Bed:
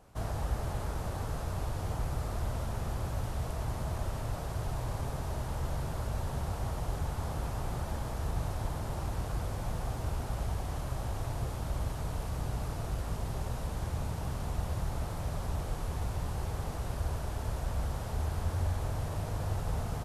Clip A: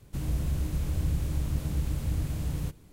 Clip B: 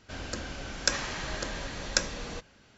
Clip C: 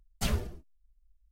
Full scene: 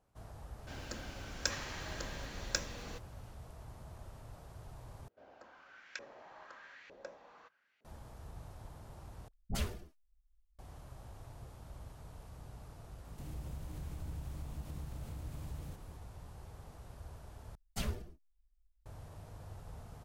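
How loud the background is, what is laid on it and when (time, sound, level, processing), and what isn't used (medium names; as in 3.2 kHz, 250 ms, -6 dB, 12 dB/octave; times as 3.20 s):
bed -16 dB
0.58 s: add B -8.5 dB + modulation noise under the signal 24 dB
5.08 s: replace with B -9.5 dB + LFO band-pass saw up 1.1 Hz 450–2300 Hz
9.28 s: replace with C -6.5 dB + phase dispersion highs, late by 57 ms, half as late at 640 Hz
13.05 s: add A -4.5 dB + compression 2.5:1, threshold -42 dBFS
17.55 s: replace with C -7.5 dB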